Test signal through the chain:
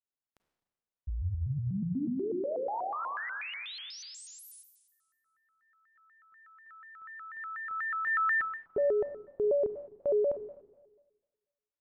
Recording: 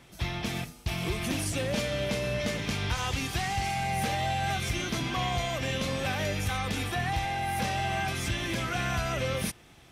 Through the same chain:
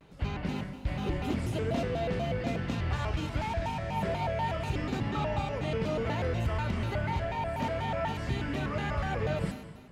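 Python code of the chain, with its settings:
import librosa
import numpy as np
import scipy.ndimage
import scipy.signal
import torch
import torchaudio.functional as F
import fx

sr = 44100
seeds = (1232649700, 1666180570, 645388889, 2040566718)

y = fx.lowpass(x, sr, hz=1000.0, slope=6)
y = fx.rev_schroeder(y, sr, rt60_s=1.3, comb_ms=28, drr_db=6.5)
y = fx.vibrato_shape(y, sr, shape='square', rate_hz=4.1, depth_cents=250.0)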